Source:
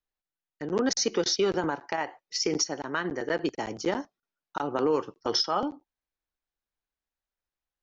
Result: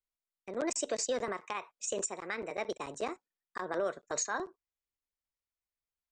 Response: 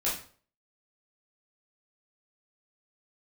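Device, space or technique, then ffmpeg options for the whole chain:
nightcore: -af "asetrate=56448,aresample=44100,volume=-7.5dB"

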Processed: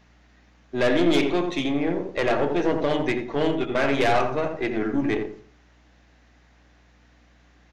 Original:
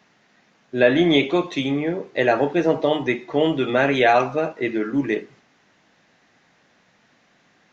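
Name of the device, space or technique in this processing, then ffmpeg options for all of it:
valve amplifier with mains hum: -filter_complex "[0:a]asettb=1/sr,asplit=3[link_01][link_02][link_03];[link_01]atrim=end=3.554[link_04];[link_02]atrim=start=3.55:end=4.11,asetpts=PTS-STARTPTS,afade=type=in:duration=0.004:curve=qsin,afade=type=out:start_time=0.556:duration=0.004:curve=qsin,agate=range=-8dB:threshold=-20dB:ratio=16:detection=peak[link_05];[link_03]atrim=start=4.106[link_06];[link_04][link_05]acrossfade=duration=0.004:curve1=hsin:curve2=qsin[link_07];[link_07][link_06]acrossfade=duration=0.004:curve1=qsin:curve2=hsin,aeval=exprs='(tanh(7.08*val(0)+0.5)-tanh(0.5))/7.08':channel_layout=same,aeval=exprs='val(0)+0.00126*(sin(2*PI*60*n/s)+sin(2*PI*2*60*n/s)/2+sin(2*PI*3*60*n/s)/3+sin(2*PI*4*60*n/s)/4+sin(2*PI*5*60*n/s)/5)':channel_layout=same,asplit=2[link_08][link_09];[link_09]adelay=86,lowpass=frequency=950:poles=1,volume=-4dB,asplit=2[link_10][link_11];[link_11]adelay=86,lowpass=frequency=950:poles=1,volume=0.32,asplit=2[link_12][link_13];[link_13]adelay=86,lowpass=frequency=950:poles=1,volume=0.32,asplit=2[link_14][link_15];[link_15]adelay=86,lowpass=frequency=950:poles=1,volume=0.32[link_16];[link_08][link_10][link_12][link_14][link_16]amix=inputs=5:normalize=0"

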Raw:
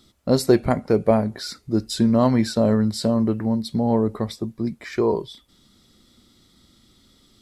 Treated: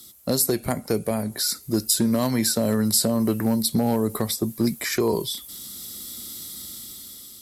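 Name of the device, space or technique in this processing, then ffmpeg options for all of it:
FM broadcast chain: -filter_complex "[0:a]highpass=frequency=66:poles=1,dynaudnorm=framelen=320:gausssize=7:maxgain=12dB,acrossover=split=290|1600[link_01][link_02][link_03];[link_01]acompressor=threshold=-20dB:ratio=4[link_04];[link_02]acompressor=threshold=-20dB:ratio=4[link_05];[link_03]acompressor=threshold=-34dB:ratio=4[link_06];[link_04][link_05][link_06]amix=inputs=3:normalize=0,aemphasis=mode=production:type=50fm,alimiter=limit=-11dB:level=0:latency=1:release=473,asoftclip=type=hard:threshold=-13dB,lowpass=frequency=15000:width=0.5412,lowpass=frequency=15000:width=1.3066,aemphasis=mode=production:type=50fm"

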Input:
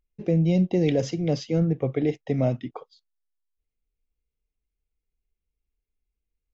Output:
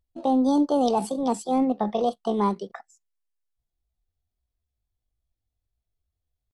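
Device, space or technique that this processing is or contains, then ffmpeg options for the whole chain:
chipmunk voice: -af "asetrate=70004,aresample=44100,atempo=0.629961"

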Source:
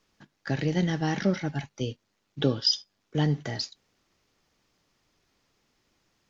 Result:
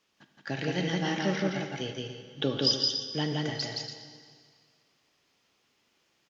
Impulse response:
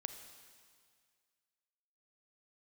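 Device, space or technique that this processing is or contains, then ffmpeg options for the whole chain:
stadium PA: -filter_complex "[0:a]highpass=frequency=230:poles=1,equalizer=frequency=2900:width_type=o:width=0.63:gain=5,aecho=1:1:169.1|285.7:0.794|0.316[link_01];[1:a]atrim=start_sample=2205[link_02];[link_01][link_02]afir=irnorm=-1:irlink=0"

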